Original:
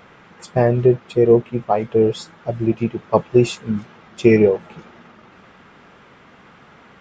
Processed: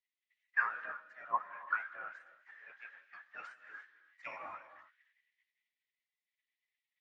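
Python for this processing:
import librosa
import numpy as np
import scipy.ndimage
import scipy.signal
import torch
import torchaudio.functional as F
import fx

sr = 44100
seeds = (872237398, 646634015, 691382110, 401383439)

y = fx.spec_gate(x, sr, threshold_db=-20, keep='weak')
y = fx.auto_wah(y, sr, base_hz=510.0, top_hz=2000.0, q=21.0, full_db=-18.5, direction='down')
y = fx.rev_gated(y, sr, seeds[0], gate_ms=350, shape='rising', drr_db=9.5)
y = fx.band_widen(y, sr, depth_pct=70)
y = y * librosa.db_to_amplitude(9.5)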